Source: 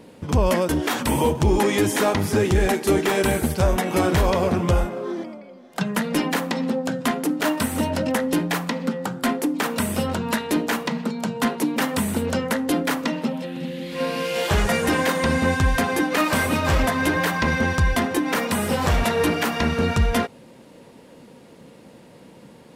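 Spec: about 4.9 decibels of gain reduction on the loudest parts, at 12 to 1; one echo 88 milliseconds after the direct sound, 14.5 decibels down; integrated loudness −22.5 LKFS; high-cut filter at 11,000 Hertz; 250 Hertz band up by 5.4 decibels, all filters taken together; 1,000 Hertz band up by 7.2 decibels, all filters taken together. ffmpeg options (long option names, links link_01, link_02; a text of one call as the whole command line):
ffmpeg -i in.wav -af "lowpass=11000,equalizer=frequency=250:width_type=o:gain=6,equalizer=frequency=1000:width_type=o:gain=8.5,acompressor=threshold=-16dB:ratio=12,aecho=1:1:88:0.188,volume=-1dB" out.wav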